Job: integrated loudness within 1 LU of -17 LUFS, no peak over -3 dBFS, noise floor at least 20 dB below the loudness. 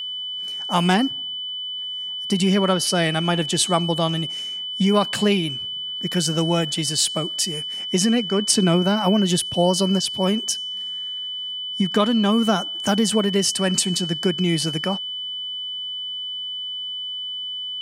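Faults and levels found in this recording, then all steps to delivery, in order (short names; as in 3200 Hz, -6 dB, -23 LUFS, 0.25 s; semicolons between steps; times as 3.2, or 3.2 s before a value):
steady tone 3000 Hz; tone level -27 dBFS; loudness -21.5 LUFS; peak -2.5 dBFS; loudness target -17.0 LUFS
-> notch 3000 Hz, Q 30; gain +4.5 dB; limiter -3 dBFS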